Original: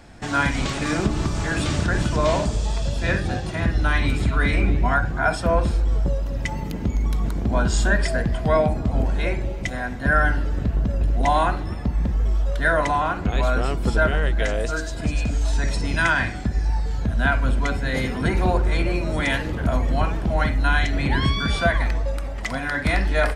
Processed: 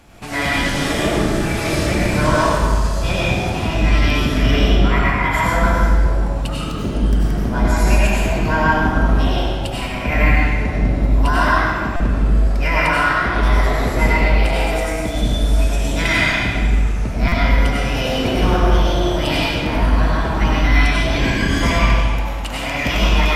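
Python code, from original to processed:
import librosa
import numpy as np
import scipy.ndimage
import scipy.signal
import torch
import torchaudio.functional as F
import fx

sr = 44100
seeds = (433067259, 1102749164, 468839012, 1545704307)

y = fx.formant_shift(x, sr, semitones=6)
y = fx.rev_freeverb(y, sr, rt60_s=1.7, hf_ratio=0.85, predelay_ms=55, drr_db=-6.0)
y = fx.buffer_glitch(y, sr, at_s=(11.96, 17.28), block=256, repeats=6)
y = y * librosa.db_to_amplitude(-2.0)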